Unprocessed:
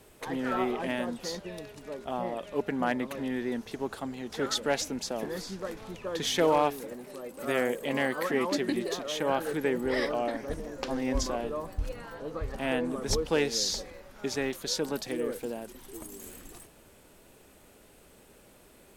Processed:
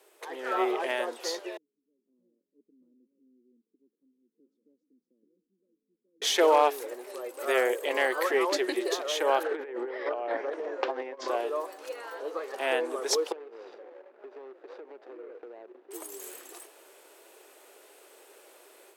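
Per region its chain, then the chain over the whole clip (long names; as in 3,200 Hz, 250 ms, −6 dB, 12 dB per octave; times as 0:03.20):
0:01.57–0:06.22: inverse Chebyshev low-pass filter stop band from 690 Hz, stop band 70 dB + comb filter 3.9 ms, depth 43%
0:09.43–0:11.28: low-pass filter 2,400 Hz + compressor whose output falls as the input rises −33 dBFS, ratio −0.5
0:13.32–0:15.91: running median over 41 samples + low-pass filter 2,200 Hz + downward compressor 12 to 1, threshold −42 dBFS
whole clip: elliptic high-pass filter 360 Hz, stop band 70 dB; automatic gain control gain up to 7 dB; level −3 dB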